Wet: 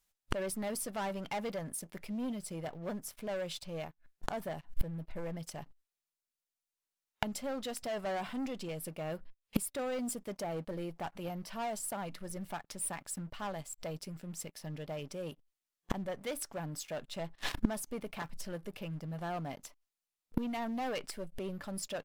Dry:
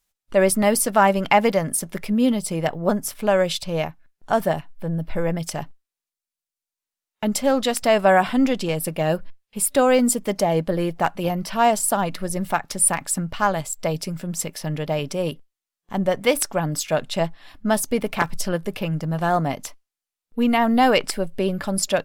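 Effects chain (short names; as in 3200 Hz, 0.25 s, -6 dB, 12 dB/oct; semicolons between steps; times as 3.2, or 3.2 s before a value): sample leveller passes 3; flipped gate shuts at -18 dBFS, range -28 dB; gain +1.5 dB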